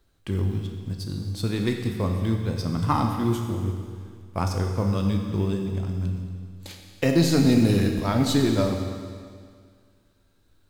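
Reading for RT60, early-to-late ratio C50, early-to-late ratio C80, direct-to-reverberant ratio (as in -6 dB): 2.0 s, 4.5 dB, 5.5 dB, 2.5 dB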